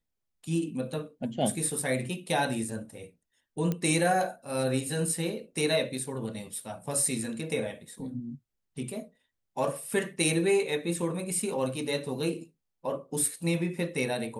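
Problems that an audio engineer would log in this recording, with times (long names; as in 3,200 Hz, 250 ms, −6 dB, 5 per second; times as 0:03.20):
0:03.72: click −17 dBFS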